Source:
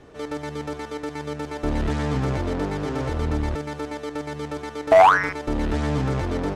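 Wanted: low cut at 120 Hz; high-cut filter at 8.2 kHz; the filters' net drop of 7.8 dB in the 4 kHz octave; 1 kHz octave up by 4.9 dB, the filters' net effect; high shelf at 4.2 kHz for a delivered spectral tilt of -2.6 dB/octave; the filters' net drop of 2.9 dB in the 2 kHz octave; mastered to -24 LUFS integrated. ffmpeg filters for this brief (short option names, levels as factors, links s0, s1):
-af "highpass=120,lowpass=8200,equalizer=f=1000:t=o:g=8,equalizer=f=2000:t=o:g=-5.5,equalizer=f=4000:t=o:g=-5.5,highshelf=f=4200:g=-6,volume=0.75"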